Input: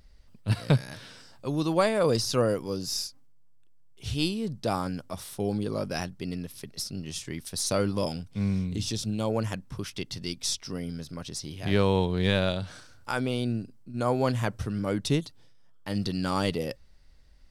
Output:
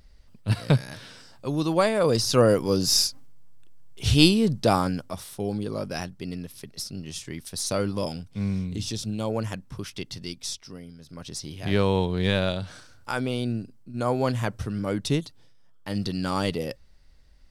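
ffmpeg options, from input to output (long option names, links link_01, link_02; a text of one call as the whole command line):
ffmpeg -i in.wav -af "volume=23dB,afade=type=in:start_time=2.11:duration=0.94:silence=0.354813,afade=type=out:start_time=4.23:duration=1.03:silence=0.281838,afade=type=out:start_time=10.08:duration=0.9:silence=0.281838,afade=type=in:start_time=10.98:duration=0.35:silence=0.251189" out.wav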